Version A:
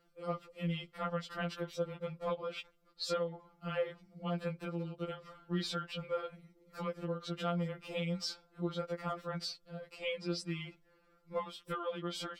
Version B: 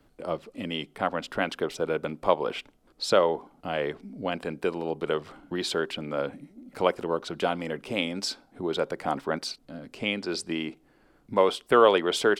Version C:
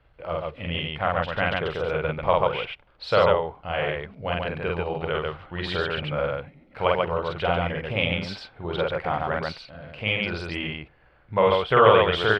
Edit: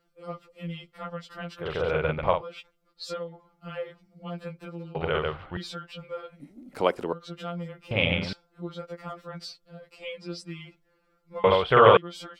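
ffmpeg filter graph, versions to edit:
-filter_complex "[2:a]asplit=4[s0][s1][s2][s3];[0:a]asplit=6[s4][s5][s6][s7][s8][s9];[s4]atrim=end=1.74[s10];[s0]atrim=start=1.58:end=2.43[s11];[s5]atrim=start=2.27:end=4.952[s12];[s1]atrim=start=4.948:end=5.572[s13];[s6]atrim=start=5.568:end=6.402[s14];[1:a]atrim=start=6.398:end=7.132[s15];[s7]atrim=start=7.128:end=7.912[s16];[s2]atrim=start=7.908:end=8.332[s17];[s8]atrim=start=8.328:end=11.442[s18];[s3]atrim=start=11.438:end=11.972[s19];[s9]atrim=start=11.968[s20];[s10][s11]acrossfade=d=0.16:c1=tri:c2=tri[s21];[s21][s12]acrossfade=d=0.16:c1=tri:c2=tri[s22];[s22][s13]acrossfade=d=0.004:c1=hsin:c2=hsin[s23];[s23][s14]acrossfade=d=0.004:c1=hsin:c2=hsin[s24];[s24][s15]acrossfade=d=0.004:c1=hsin:c2=hsin[s25];[s25][s16]acrossfade=d=0.004:c1=hsin:c2=hsin[s26];[s26][s17]acrossfade=d=0.004:c1=hsin:c2=hsin[s27];[s27][s18]acrossfade=d=0.004:c1=hsin:c2=hsin[s28];[s28][s19]acrossfade=d=0.004:c1=hsin:c2=hsin[s29];[s29][s20]acrossfade=d=0.004:c1=hsin:c2=hsin"

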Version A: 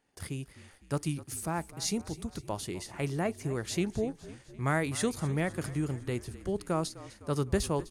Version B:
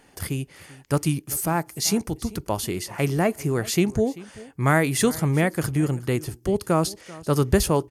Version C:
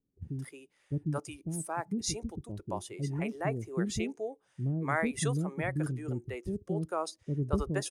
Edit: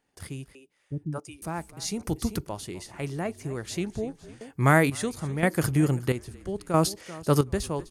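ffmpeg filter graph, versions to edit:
-filter_complex "[1:a]asplit=4[s0][s1][s2][s3];[0:a]asplit=6[s4][s5][s6][s7][s8][s9];[s4]atrim=end=0.552[s10];[2:a]atrim=start=0.548:end=1.422[s11];[s5]atrim=start=1.418:end=2.032[s12];[s0]atrim=start=2.028:end=2.472[s13];[s6]atrim=start=2.468:end=4.412[s14];[s1]atrim=start=4.408:end=4.902[s15];[s7]atrim=start=4.898:end=5.432[s16];[s2]atrim=start=5.428:end=6.122[s17];[s8]atrim=start=6.118:end=6.742[s18];[s3]atrim=start=6.738:end=7.412[s19];[s9]atrim=start=7.408[s20];[s10][s11]acrossfade=d=0.004:c1=hsin:c2=hsin[s21];[s21][s12]acrossfade=d=0.004:c1=hsin:c2=hsin[s22];[s22][s13]acrossfade=d=0.004:c1=hsin:c2=hsin[s23];[s23][s14]acrossfade=d=0.004:c1=hsin:c2=hsin[s24];[s24][s15]acrossfade=d=0.004:c1=hsin:c2=hsin[s25];[s25][s16]acrossfade=d=0.004:c1=hsin:c2=hsin[s26];[s26][s17]acrossfade=d=0.004:c1=hsin:c2=hsin[s27];[s27][s18]acrossfade=d=0.004:c1=hsin:c2=hsin[s28];[s28][s19]acrossfade=d=0.004:c1=hsin:c2=hsin[s29];[s29][s20]acrossfade=d=0.004:c1=hsin:c2=hsin"

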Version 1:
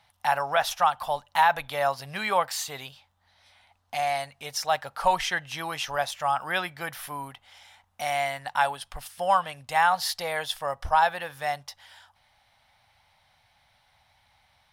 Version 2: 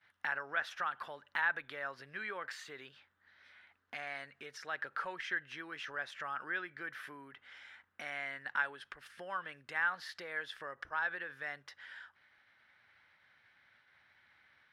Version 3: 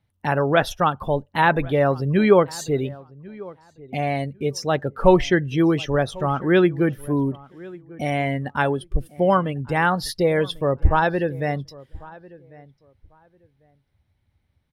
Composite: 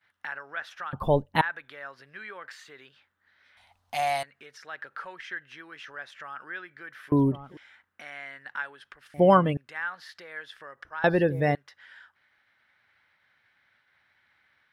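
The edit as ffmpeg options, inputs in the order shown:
-filter_complex "[2:a]asplit=4[s0][s1][s2][s3];[1:a]asplit=6[s4][s5][s6][s7][s8][s9];[s4]atrim=end=0.932[s10];[s0]atrim=start=0.928:end=1.412[s11];[s5]atrim=start=1.408:end=3.572[s12];[0:a]atrim=start=3.568:end=4.232[s13];[s6]atrim=start=4.228:end=7.122[s14];[s1]atrim=start=7.118:end=7.572[s15];[s7]atrim=start=7.568:end=9.142[s16];[s2]atrim=start=9.138:end=9.572[s17];[s8]atrim=start=9.568:end=11.042[s18];[s3]atrim=start=11.038:end=11.552[s19];[s9]atrim=start=11.548[s20];[s10][s11]acrossfade=d=0.004:c1=hsin:c2=hsin[s21];[s21][s12]acrossfade=d=0.004:c1=hsin:c2=hsin[s22];[s22][s13]acrossfade=d=0.004:c1=hsin:c2=hsin[s23];[s23][s14]acrossfade=d=0.004:c1=hsin:c2=hsin[s24];[s24][s15]acrossfade=d=0.004:c1=hsin:c2=hsin[s25];[s25][s16]acrossfade=d=0.004:c1=hsin:c2=hsin[s26];[s26][s17]acrossfade=d=0.004:c1=hsin:c2=hsin[s27];[s27][s18]acrossfade=d=0.004:c1=hsin:c2=hsin[s28];[s28][s19]acrossfade=d=0.004:c1=hsin:c2=hsin[s29];[s29][s20]acrossfade=d=0.004:c1=hsin:c2=hsin"

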